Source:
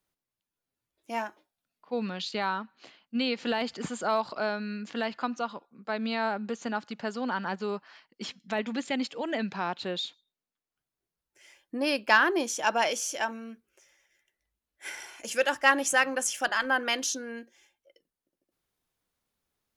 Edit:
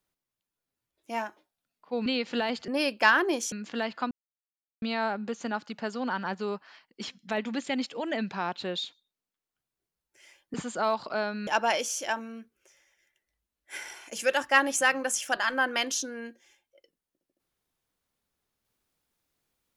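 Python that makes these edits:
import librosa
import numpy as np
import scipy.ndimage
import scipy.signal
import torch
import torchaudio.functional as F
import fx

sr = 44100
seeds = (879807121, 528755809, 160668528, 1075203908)

y = fx.edit(x, sr, fx.cut(start_s=2.06, length_s=1.12),
    fx.swap(start_s=3.8, length_s=0.93, other_s=11.75, other_length_s=0.84),
    fx.silence(start_s=5.32, length_s=0.71), tone=tone)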